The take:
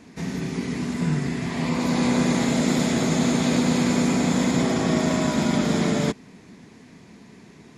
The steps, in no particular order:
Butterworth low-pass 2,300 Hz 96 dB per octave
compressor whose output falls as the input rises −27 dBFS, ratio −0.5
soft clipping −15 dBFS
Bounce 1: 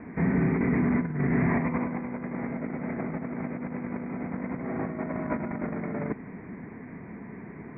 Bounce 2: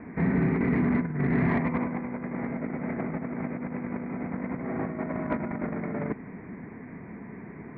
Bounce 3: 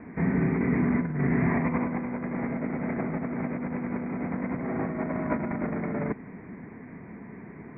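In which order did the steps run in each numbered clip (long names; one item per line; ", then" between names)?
compressor whose output falls as the input rises, then soft clipping, then Butterworth low-pass
Butterworth low-pass, then compressor whose output falls as the input rises, then soft clipping
soft clipping, then Butterworth low-pass, then compressor whose output falls as the input rises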